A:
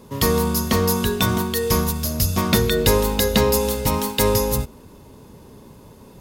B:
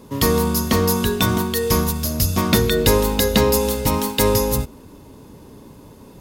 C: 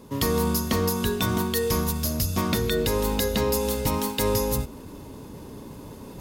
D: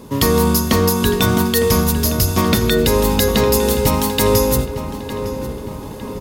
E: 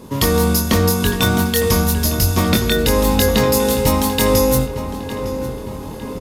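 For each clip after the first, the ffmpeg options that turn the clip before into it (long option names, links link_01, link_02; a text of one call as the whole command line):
ffmpeg -i in.wav -af "equalizer=frequency=290:width=6.2:gain=6.5,volume=1dB" out.wav
ffmpeg -i in.wav -af "alimiter=limit=-9dB:level=0:latency=1:release=263,areverse,acompressor=mode=upward:threshold=-29dB:ratio=2.5,areverse,volume=-3.5dB" out.wav
ffmpeg -i in.wav -filter_complex "[0:a]asplit=2[link_01][link_02];[link_02]adelay=907,lowpass=frequency=2700:poles=1,volume=-10dB,asplit=2[link_03][link_04];[link_04]adelay=907,lowpass=frequency=2700:poles=1,volume=0.52,asplit=2[link_05][link_06];[link_06]adelay=907,lowpass=frequency=2700:poles=1,volume=0.52,asplit=2[link_07][link_08];[link_08]adelay=907,lowpass=frequency=2700:poles=1,volume=0.52,asplit=2[link_09][link_10];[link_10]adelay=907,lowpass=frequency=2700:poles=1,volume=0.52,asplit=2[link_11][link_12];[link_12]adelay=907,lowpass=frequency=2700:poles=1,volume=0.52[link_13];[link_01][link_03][link_05][link_07][link_09][link_11][link_13]amix=inputs=7:normalize=0,volume=9dB" out.wav
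ffmpeg -i in.wav -filter_complex "[0:a]asplit=2[link_01][link_02];[link_02]adelay=23,volume=-5dB[link_03];[link_01][link_03]amix=inputs=2:normalize=0,aresample=32000,aresample=44100,volume=-1dB" out.wav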